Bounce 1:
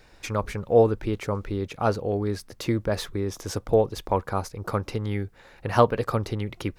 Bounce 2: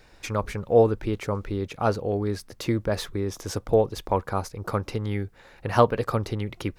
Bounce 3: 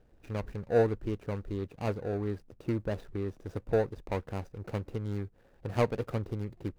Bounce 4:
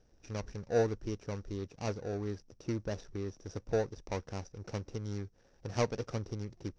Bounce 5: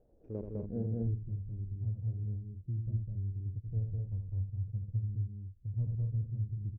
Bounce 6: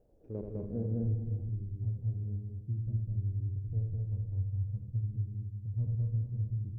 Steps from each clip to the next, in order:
nothing audible
median filter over 41 samples; gain -6 dB
synth low-pass 5700 Hz, resonance Q 11; gain -4 dB
low-pass sweep 600 Hz -> 110 Hz, 0.11–1.13; on a send: loudspeakers at several distances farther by 28 m -7 dB, 70 m -2 dB, 85 m -7 dB; on the sum: gain -2.5 dB
non-linear reverb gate 0.49 s flat, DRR 6.5 dB

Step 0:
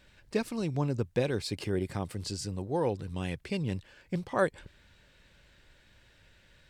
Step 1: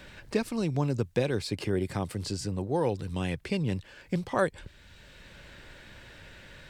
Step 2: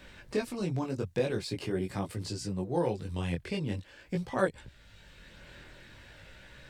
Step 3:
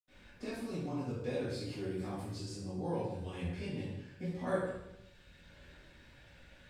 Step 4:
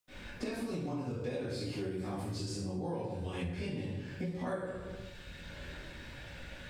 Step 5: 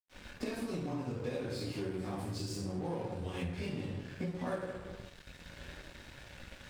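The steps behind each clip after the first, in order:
three-band squash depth 40%; gain +2.5 dB
chorus voices 2, 0.45 Hz, delay 20 ms, depth 4.2 ms
reverb RT60 0.90 s, pre-delay 76 ms; gain +5.5 dB
compressor 6:1, threshold -46 dBFS, peak gain reduction 17.5 dB; gain +11 dB
crossover distortion -50.5 dBFS; gain +1 dB

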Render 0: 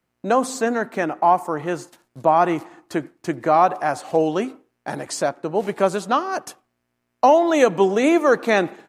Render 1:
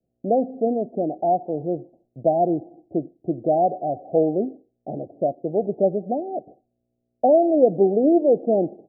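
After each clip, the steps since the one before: steep low-pass 740 Hz 96 dB/oct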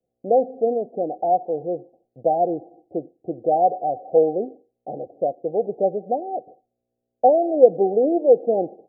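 small resonant body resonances 500/760 Hz, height 13 dB, ringing for 25 ms; gain -8 dB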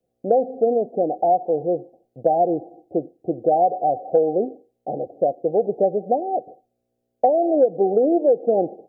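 compressor 6:1, threshold -18 dBFS, peak gain reduction 12 dB; gain +4.5 dB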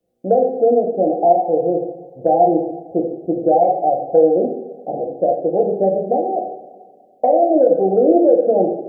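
two-slope reverb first 0.84 s, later 2.6 s, DRR 0 dB; gain +1 dB

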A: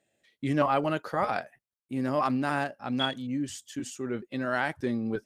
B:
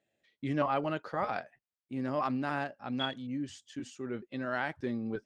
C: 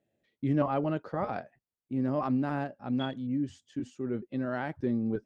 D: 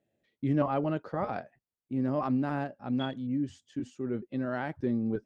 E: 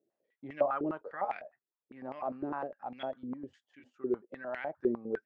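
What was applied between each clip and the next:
LPF 5300 Hz 12 dB/oct; gain -5 dB
tilt shelf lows +7 dB, about 760 Hz
nothing audible
stepped band-pass 9.9 Hz 380–2200 Hz; gain +6 dB

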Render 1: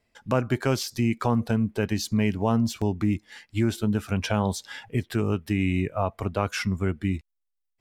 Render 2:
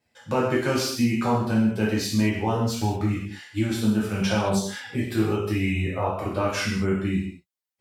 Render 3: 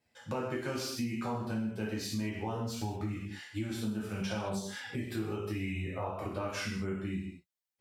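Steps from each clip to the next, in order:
HPF 85 Hz; flange 0.35 Hz, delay 1.1 ms, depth 4.6 ms, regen +54%; non-linear reverb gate 0.25 s falling, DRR -6 dB
compressor 2.5:1, threshold -32 dBFS, peak gain reduction 10.5 dB; gain -4 dB

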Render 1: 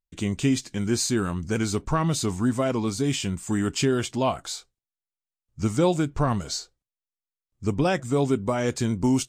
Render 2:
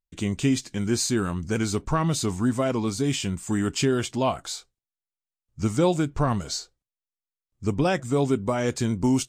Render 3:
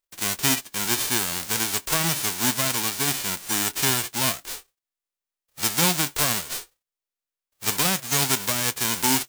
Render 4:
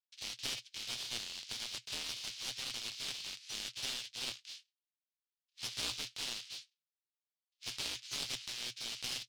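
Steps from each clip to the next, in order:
nothing audible
spectral whitening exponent 0.1
Butterworth band-pass 3800 Hz, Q 1.4; one-sided clip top -34.5 dBFS; ring modulator 120 Hz; gain -5 dB

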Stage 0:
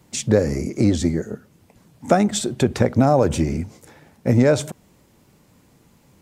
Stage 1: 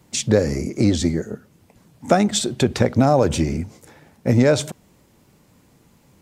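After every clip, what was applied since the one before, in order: dynamic EQ 4000 Hz, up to +5 dB, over -40 dBFS, Q 0.84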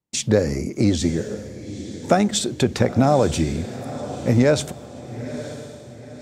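gate -46 dBFS, range -31 dB; diffused feedback echo 0.936 s, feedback 41%, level -13 dB; gain -1 dB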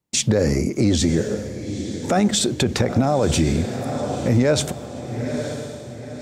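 limiter -14 dBFS, peak gain reduction 11.5 dB; gain +5 dB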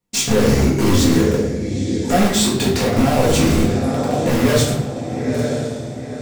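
in parallel at -5 dB: wrapped overs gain 15 dB; on the sum: reverb RT60 0.80 s, pre-delay 4 ms, DRR -5.5 dB; gain -5 dB

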